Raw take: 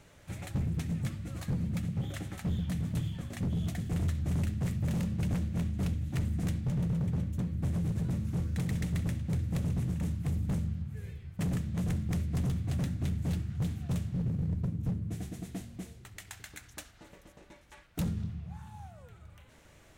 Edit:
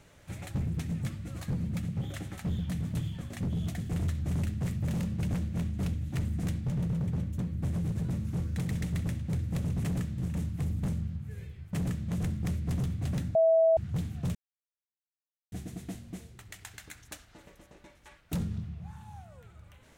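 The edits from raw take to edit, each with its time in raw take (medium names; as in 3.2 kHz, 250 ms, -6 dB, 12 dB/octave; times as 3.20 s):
11.40–11.74 s: copy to 9.84 s
13.01–13.43 s: bleep 652 Hz -19 dBFS
14.01–15.18 s: mute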